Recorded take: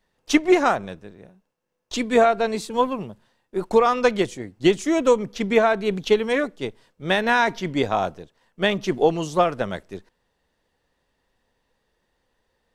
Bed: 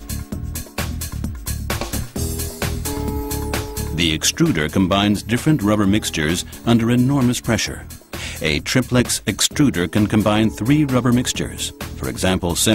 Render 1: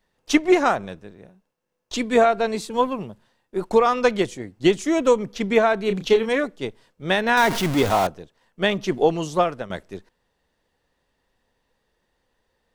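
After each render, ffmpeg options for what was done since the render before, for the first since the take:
-filter_complex "[0:a]asettb=1/sr,asplit=3[a][b][c];[a]atrim=end=5.854[d];[b]atrim=start=5.85:end=6.29,asetpts=PTS-STARTPTS,afade=t=in:d=0.004:c=qsin,afade=t=out:st=0.436:d=0.004:c=qsin,asplit=2[e][f];[f]adelay=31,volume=-8dB[g];[e][g]amix=inputs=2:normalize=0,atrim=end_sample=19404[h];[c]atrim=start=6.286[i];[d][h]acrossfade=d=0.004:c1=hsin:c2=qsin[j];[j][i]acrossfade=d=0.004:c1=qsin:c2=hsin,asettb=1/sr,asplit=3[k][l][m];[k]atrim=end=7.374[n];[l]atrim=start=7.37:end=8.07,asetpts=PTS-STARTPTS,afade=t=in:d=0.004:c=qsin,afade=t=out:st=0.696:d=0.004:c=qsin,aeval=exprs='val(0)+0.5*0.0841*sgn(val(0))':c=same[o];[m]atrim=start=8.066[p];[n][o]acrossfade=d=0.004:c1=hsin:c2=qsin[q];[q][p]acrossfade=d=0.004:c1=qsin:c2=hsin,asplit=2[r][s];[r]atrim=end=9.7,asetpts=PTS-STARTPTS,afade=t=out:st=9.27:d=0.43:c=qsin:silence=0.281838[t];[s]atrim=start=9.7,asetpts=PTS-STARTPTS,afade=t=in:d=0.004:c=hsin:silence=0.281838[u];[t][u]concat=n=2:v=0:a=1"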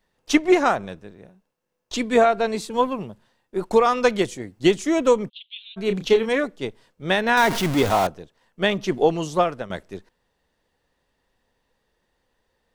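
-filter_complex "[0:a]asettb=1/sr,asplit=3[a][b][c];[a]atrim=end=3.714[d];[b]atrim=start=3.71:end=4.74,asetpts=PTS-STARTPTS,afade=t=in:d=0.004:c=qsin,afade=t=out:st=1.026:d=0.004:c=qsin,highshelf=f=6.5k:g=5[e];[c]atrim=start=4.736[f];[d][e]acrossfade=d=0.004:c1=hsin:c2=qsin[g];[g][f]acrossfade=d=0.004:c1=qsin:c2=hsin,asplit=3[h][i][j];[h]afade=t=out:st=5.28:d=0.02[k];[i]asuperpass=centerf=3300:order=8:qfactor=2.7,afade=t=in:st=5.28:d=0.02,afade=t=out:st=5.76:d=0.02[l];[j]afade=t=in:st=5.76:d=0.02[m];[k][l][m]amix=inputs=3:normalize=0"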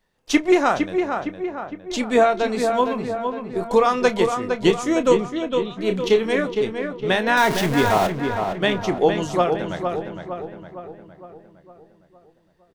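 -filter_complex "[0:a]asplit=2[a][b];[b]adelay=28,volume=-12dB[c];[a][c]amix=inputs=2:normalize=0,asplit=2[d][e];[e]adelay=460,lowpass=f=2.5k:p=1,volume=-5.5dB,asplit=2[f][g];[g]adelay=460,lowpass=f=2.5k:p=1,volume=0.54,asplit=2[h][i];[i]adelay=460,lowpass=f=2.5k:p=1,volume=0.54,asplit=2[j][k];[k]adelay=460,lowpass=f=2.5k:p=1,volume=0.54,asplit=2[l][m];[m]adelay=460,lowpass=f=2.5k:p=1,volume=0.54,asplit=2[n][o];[o]adelay=460,lowpass=f=2.5k:p=1,volume=0.54,asplit=2[p][q];[q]adelay=460,lowpass=f=2.5k:p=1,volume=0.54[r];[d][f][h][j][l][n][p][r]amix=inputs=8:normalize=0"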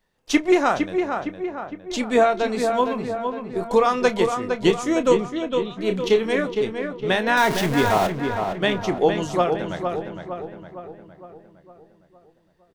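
-af "volume=-1dB"

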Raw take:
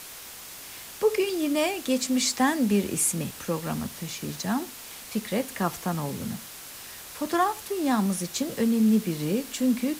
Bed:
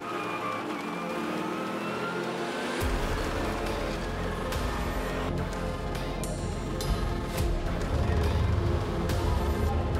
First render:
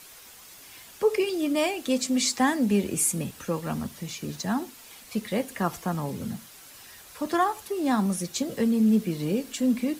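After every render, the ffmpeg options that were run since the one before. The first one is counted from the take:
-af "afftdn=nr=8:nf=-43"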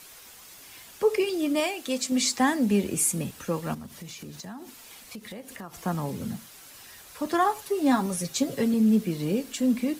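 -filter_complex "[0:a]asettb=1/sr,asplit=3[a][b][c];[a]atrim=end=1.604[d];[b]atrim=start=1.6:end=2.12,asetpts=PTS-STARTPTS,afade=t=in:d=0.004:c=qsin,afade=t=out:st=0.516:d=0.004:c=qsin,lowshelf=f=480:g=-6.5[e];[c]atrim=start=2.116[f];[d][e]acrossfade=d=0.004:c1=hsin:c2=qsin[g];[g][f]acrossfade=d=0.004:c1=qsin:c2=hsin,asettb=1/sr,asplit=3[h][i][j];[h]atrim=end=3.744[k];[i]atrim=start=3.74:end=5.83,asetpts=PTS-STARTPTS,afade=t=in:d=0.004:c=qsin,afade=t=out:st=2.086:d=0.004:c=qsin,acompressor=threshold=-37dB:ratio=6:attack=3.2:release=140:knee=1:detection=peak[l];[j]atrim=start=5.826[m];[k][l]acrossfade=d=0.004:c1=hsin:c2=qsin[n];[n][m]acrossfade=d=0.004:c1=qsin:c2=hsin,asettb=1/sr,asplit=3[o][p][q];[o]atrim=end=7.444[r];[p]atrim=start=7.44:end=8.74,asetpts=PTS-STARTPTS,afade=t=in:d=0.004:c=qsin,afade=t=out:st=1.296:d=0.004:c=qsin,aecho=1:1:7.3:0.65,atrim=end_sample=57330[s];[q]atrim=start=8.736[t];[r][s]acrossfade=d=0.004:c1=hsin:c2=qsin[u];[u][t]acrossfade=d=0.004:c1=qsin:c2=hsin"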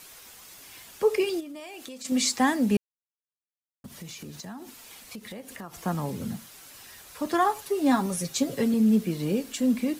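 -filter_complex "[0:a]asplit=3[a][b][c];[a]afade=t=out:st=1.39:d=0.02[d];[b]acompressor=threshold=-37dB:ratio=16:attack=3.2:release=140:knee=1:detection=peak,afade=t=in:st=1.39:d=0.02,afade=t=out:st=2.04:d=0.02[e];[c]afade=t=in:st=2.04:d=0.02[f];[d][e][f]amix=inputs=3:normalize=0,asplit=3[g][h][i];[g]atrim=end=2.77,asetpts=PTS-STARTPTS,afade=t=out:st=2.766:d=0.004:c=hsin[j];[h]atrim=start=2.77:end=3.84,asetpts=PTS-STARTPTS,volume=0[k];[i]atrim=start=3.84,asetpts=PTS-STARTPTS,afade=t=in:d=0.004:c=hsin[l];[j][k][l]concat=n=3:v=0:a=1"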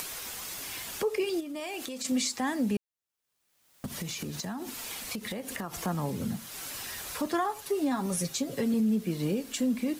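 -af "acompressor=mode=upward:threshold=-29dB:ratio=2.5,alimiter=limit=-20.5dB:level=0:latency=1:release=202"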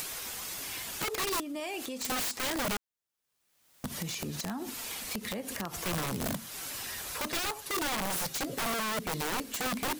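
-af "aeval=exprs='(mod(22.4*val(0)+1,2)-1)/22.4':c=same"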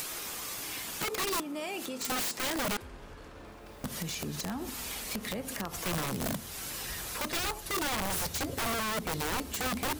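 -filter_complex "[1:a]volume=-18.5dB[a];[0:a][a]amix=inputs=2:normalize=0"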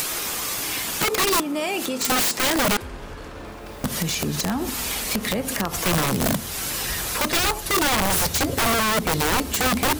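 -af "volume=11.5dB"

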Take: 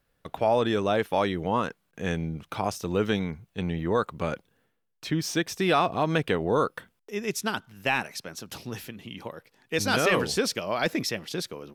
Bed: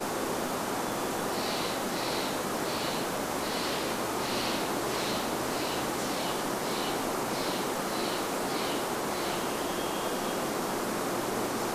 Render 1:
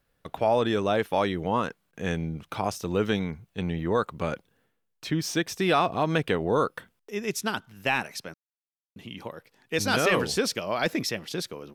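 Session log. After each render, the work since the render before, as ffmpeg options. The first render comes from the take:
-filter_complex "[0:a]asplit=3[a][b][c];[a]atrim=end=8.34,asetpts=PTS-STARTPTS,afade=t=out:st=8.336:d=0.004:c=hsin[d];[b]atrim=start=8.34:end=8.96,asetpts=PTS-STARTPTS,volume=0[e];[c]atrim=start=8.96,asetpts=PTS-STARTPTS,afade=t=in:d=0.004:c=hsin[f];[d][e][f]concat=n=3:v=0:a=1"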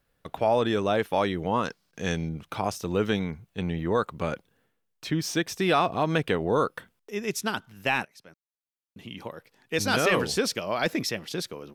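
-filter_complex "[0:a]asettb=1/sr,asplit=3[a][b][c];[a]atrim=end=1.654[d];[b]atrim=start=1.65:end=2.29,asetpts=PTS-STARTPTS,afade=t=in:d=0.004:c=qsin,afade=t=out:st=0.636:d=0.004:c=qsin,equalizer=f=5k:t=o:w=0.79:g=13[e];[c]atrim=start=2.286[f];[d][e]acrossfade=d=0.004:c1=hsin:c2=qsin[g];[g][f]acrossfade=d=0.004:c1=qsin:c2=hsin,asplit=2[h][i];[h]atrim=end=8.05,asetpts=PTS-STARTPTS,afade=t=out:st=8.046:d=0.004:c=hsin:silence=0.0630957[j];[i]atrim=start=8.05,asetpts=PTS-STARTPTS,afade=t=in:d=1.03:silence=0.0630957[k];[j][k]concat=n=2:v=0:a=1"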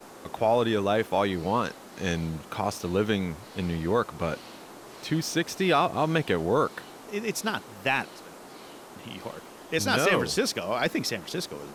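-filter_complex "[1:a]volume=-14.5dB[a];[0:a][a]amix=inputs=2:normalize=0"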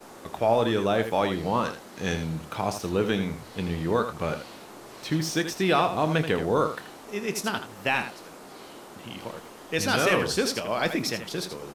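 -filter_complex "[0:a]asplit=2[a][b];[b]adelay=26,volume=-13dB[c];[a][c]amix=inputs=2:normalize=0,aecho=1:1:81:0.335"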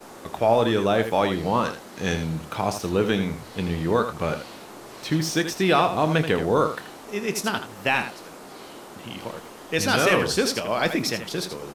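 -af "volume=3dB"

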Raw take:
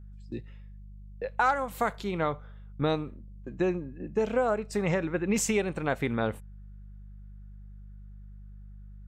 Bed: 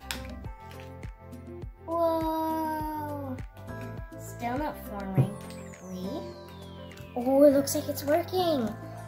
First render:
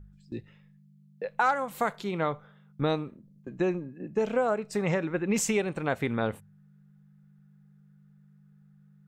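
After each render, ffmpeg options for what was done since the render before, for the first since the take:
-af "bandreject=f=50:t=h:w=4,bandreject=f=100:t=h:w=4"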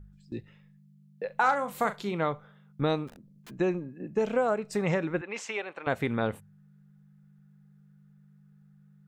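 -filter_complex "[0:a]asettb=1/sr,asplit=3[a][b][c];[a]atrim=end=1.264[d];[b]atrim=start=1.26:end=2.13,asetpts=PTS-STARTPTS,afade=t=in:d=0.004:c=qsin,afade=t=out:st=0.866:d=0.004:c=qsin,asplit=2[e][f];[f]adelay=39,volume=-11dB[g];[e][g]amix=inputs=2:normalize=0,atrim=end_sample=38367[h];[c]atrim=start=2.126[i];[d][h]acrossfade=d=0.004:c1=hsin:c2=qsin[j];[j][i]acrossfade=d=0.004:c1=qsin:c2=hsin,asplit=3[k][l][m];[k]afade=t=out:st=3.07:d=0.02[n];[l]aeval=exprs='(mod(141*val(0)+1,2)-1)/141':c=same,afade=t=in:st=3.07:d=0.02,afade=t=out:st=3.49:d=0.02[o];[m]afade=t=in:st=3.49:d=0.02[p];[n][o][p]amix=inputs=3:normalize=0,asettb=1/sr,asplit=3[q][r][s];[q]atrim=end=5.214[t];[r]atrim=start=5.21:end=5.87,asetpts=PTS-STARTPTS,afade=t=in:d=0.004:c=qsin,afade=t=out:st=0.656:d=0.004:c=qsin,highpass=670,lowpass=3.4k[u];[s]atrim=start=5.866[v];[t][u]acrossfade=d=0.004:c1=hsin:c2=qsin[w];[w][v]acrossfade=d=0.004:c1=qsin:c2=hsin"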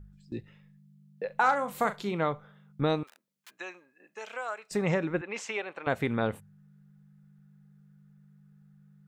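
-filter_complex "[0:a]asettb=1/sr,asplit=3[a][b][c];[a]atrim=end=3.034[d];[b]atrim=start=3.03:end=4.71,asetpts=PTS-STARTPTS,afade=t=in:d=0.004:c=qsin,afade=t=out:st=1.676:d=0.004:c=qsin,highpass=1.2k[e];[c]atrim=start=4.706[f];[d][e]acrossfade=d=0.004:c1=hsin:c2=qsin[g];[g][f]acrossfade=d=0.004:c1=qsin:c2=hsin"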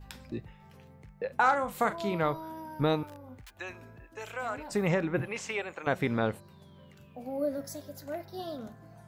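-filter_complex "[1:a]volume=-12.5dB[a];[0:a][a]amix=inputs=2:normalize=0"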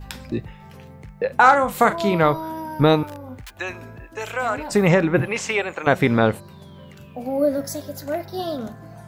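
-af "volume=11.5dB,alimiter=limit=-2dB:level=0:latency=1"

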